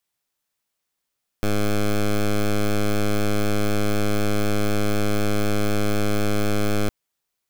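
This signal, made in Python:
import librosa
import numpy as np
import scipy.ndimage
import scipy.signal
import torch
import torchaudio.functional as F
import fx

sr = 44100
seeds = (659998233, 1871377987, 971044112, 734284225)

y = fx.pulse(sr, length_s=5.46, hz=104.0, level_db=-19.5, duty_pct=11)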